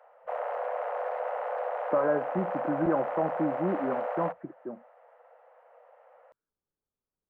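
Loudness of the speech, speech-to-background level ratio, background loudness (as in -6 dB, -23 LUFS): -31.0 LUFS, 2.5 dB, -33.5 LUFS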